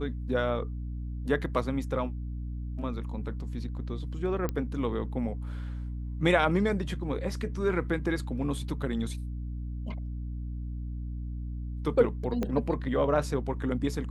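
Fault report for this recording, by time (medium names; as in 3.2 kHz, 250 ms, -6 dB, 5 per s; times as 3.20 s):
hum 60 Hz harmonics 5 -35 dBFS
4.49 s: pop -18 dBFS
12.43 s: pop -18 dBFS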